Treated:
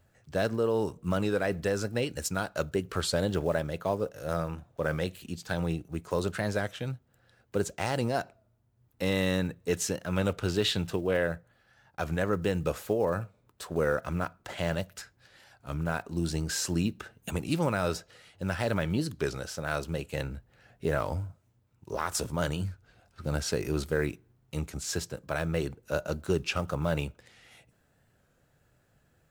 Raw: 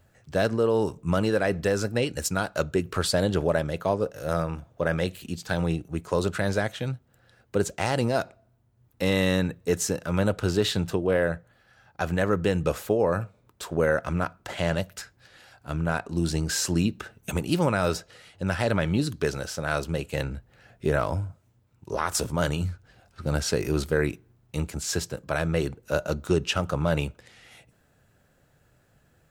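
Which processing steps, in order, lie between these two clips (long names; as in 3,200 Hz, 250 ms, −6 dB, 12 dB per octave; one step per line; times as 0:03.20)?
one scale factor per block 7 bits
0:09.55–0:11.27: dynamic equaliser 2,900 Hz, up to +6 dB, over −42 dBFS, Q 1.2
wow of a warped record 33 1/3 rpm, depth 100 cents
level −4.5 dB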